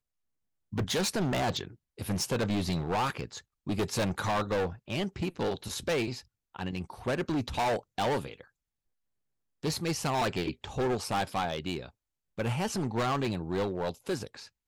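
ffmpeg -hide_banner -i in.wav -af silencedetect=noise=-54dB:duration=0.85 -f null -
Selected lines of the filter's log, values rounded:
silence_start: 8.47
silence_end: 9.63 | silence_duration: 1.16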